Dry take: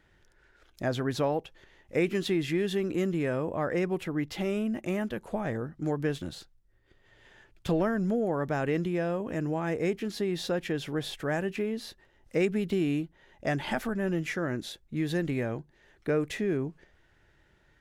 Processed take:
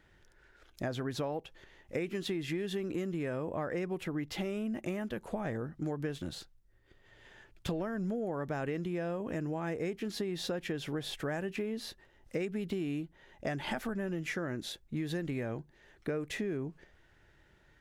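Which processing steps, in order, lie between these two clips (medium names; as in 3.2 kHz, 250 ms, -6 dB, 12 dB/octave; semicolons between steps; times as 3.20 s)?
compression, threshold -32 dBFS, peak gain reduction 10.5 dB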